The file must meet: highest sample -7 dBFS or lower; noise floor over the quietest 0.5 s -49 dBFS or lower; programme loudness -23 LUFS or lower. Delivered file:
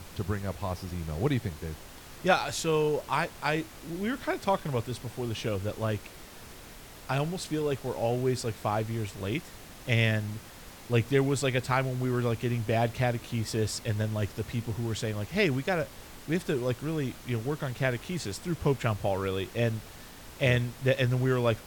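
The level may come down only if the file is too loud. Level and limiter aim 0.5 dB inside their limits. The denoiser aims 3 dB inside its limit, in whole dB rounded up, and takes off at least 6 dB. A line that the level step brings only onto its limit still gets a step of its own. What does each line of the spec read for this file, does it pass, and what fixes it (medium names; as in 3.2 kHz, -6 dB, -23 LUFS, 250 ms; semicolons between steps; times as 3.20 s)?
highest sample -8.0 dBFS: pass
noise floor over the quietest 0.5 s -47 dBFS: fail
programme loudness -30.0 LUFS: pass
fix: noise reduction 6 dB, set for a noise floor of -47 dBFS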